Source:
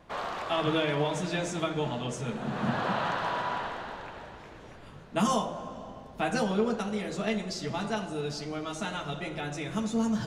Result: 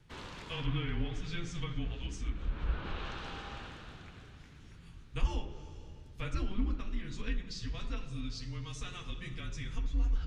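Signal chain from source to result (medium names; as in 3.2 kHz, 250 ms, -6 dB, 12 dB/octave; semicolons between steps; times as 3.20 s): frequency shift -180 Hz; amplifier tone stack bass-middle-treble 6-0-2; low-pass that closes with the level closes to 2.7 kHz, closed at -41.5 dBFS; trim +11.5 dB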